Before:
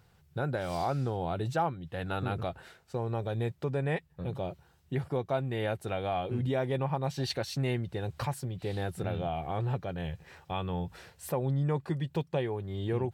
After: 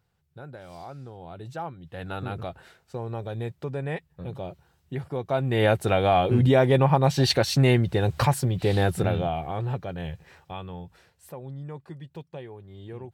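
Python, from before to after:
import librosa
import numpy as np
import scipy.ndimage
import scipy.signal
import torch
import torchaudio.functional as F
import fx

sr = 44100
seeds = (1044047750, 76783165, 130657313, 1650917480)

y = fx.gain(x, sr, db=fx.line((1.17, -10.0), (2.05, 0.0), (5.12, 0.0), (5.64, 11.5), (8.92, 11.5), (9.52, 2.5), (10.1, 2.5), (11.1, -8.5)))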